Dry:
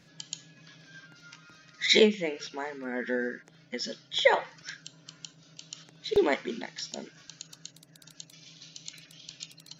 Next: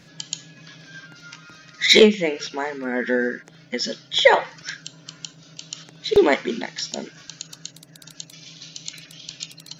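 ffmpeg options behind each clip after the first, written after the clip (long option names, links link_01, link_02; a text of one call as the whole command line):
ffmpeg -i in.wav -af "acontrast=64,volume=2.5dB" out.wav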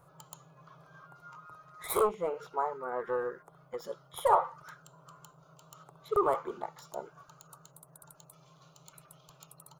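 ffmpeg -i in.wav -af "asoftclip=type=tanh:threshold=-14.5dB,firequalizer=gain_entry='entry(140,0);entry(230,-21);entry(390,-1);entry(1200,12);entry(1700,-16);entry(5700,-22);entry(8800,5)':delay=0.05:min_phase=1,volume=-7.5dB" out.wav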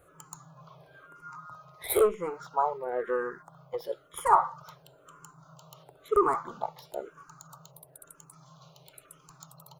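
ffmpeg -i in.wav -filter_complex "[0:a]asplit=2[link_01][link_02];[link_02]afreqshift=-1[link_03];[link_01][link_03]amix=inputs=2:normalize=1,volume=6dB" out.wav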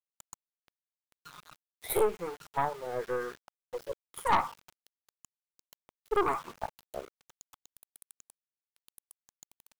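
ffmpeg -i in.wav -af "aeval=exprs='val(0)*gte(abs(val(0)),0.00891)':channel_layout=same,aeval=exprs='(tanh(7.94*val(0)+0.65)-tanh(0.65))/7.94':channel_layout=same" out.wav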